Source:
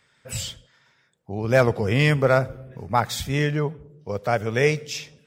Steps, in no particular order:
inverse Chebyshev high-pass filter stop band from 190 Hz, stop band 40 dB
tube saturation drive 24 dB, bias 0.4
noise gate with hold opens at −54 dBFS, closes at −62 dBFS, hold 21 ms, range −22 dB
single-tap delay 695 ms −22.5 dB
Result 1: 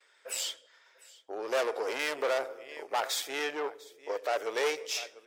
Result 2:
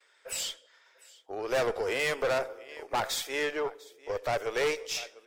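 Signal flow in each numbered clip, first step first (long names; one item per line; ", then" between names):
noise gate with hold, then single-tap delay, then tube saturation, then inverse Chebyshev high-pass filter
single-tap delay, then noise gate with hold, then inverse Chebyshev high-pass filter, then tube saturation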